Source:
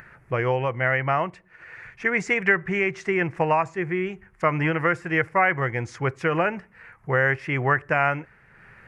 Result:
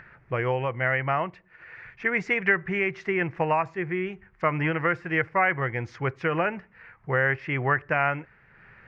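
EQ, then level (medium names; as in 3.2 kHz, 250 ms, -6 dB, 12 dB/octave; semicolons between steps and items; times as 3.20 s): distance through air 260 m; treble shelf 2.9 kHz +9.5 dB; -2.5 dB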